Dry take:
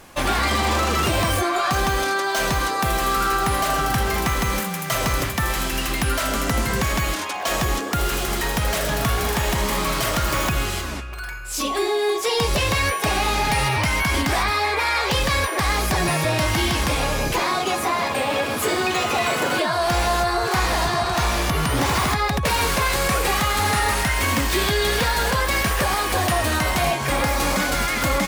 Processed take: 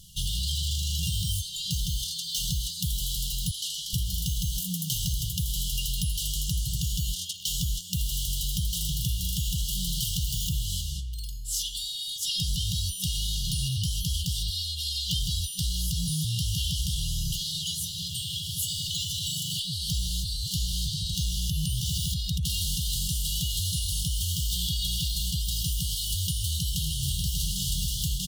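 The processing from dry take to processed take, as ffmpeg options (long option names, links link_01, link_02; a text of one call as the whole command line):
ffmpeg -i in.wav -filter_complex "[0:a]asettb=1/sr,asplit=3[link_01][link_02][link_03];[link_01]atrim=end=3.514[link_04];[link_02]atrim=start=3.51:end=3.93,asetpts=PTS-STARTPTS,afade=type=in:duration=0.004:curve=qsin,afade=type=out:start_time=0.416:duration=0.004:curve=qsin,bandpass=frequency=3700:width_type=q:width=0.58[link_05];[link_03]atrim=start=3.926[link_06];[link_04][link_05]acrossfade=duration=0.004:curve1=hsin:curve2=qsin[link_07];[link_07][link_06]acrossfade=duration=0.004:curve1=qsin:curve2=hsin,asplit=2[link_08][link_09];[link_09]afade=type=in:start_time=26.31:duration=0.01,afade=type=out:start_time=27.37:duration=0.01,aecho=0:1:590|1180|1770|2360|2950|3540:0.707946|0.318576|0.143359|0.0645116|0.0290302|0.0130636[link_10];[link_08][link_10]amix=inputs=2:normalize=0,afftfilt=real='re*(1-between(b*sr/4096,190,2800))':imag='im*(1-between(b*sr/4096,190,2800))':win_size=4096:overlap=0.75,acompressor=threshold=-26dB:ratio=3" out.wav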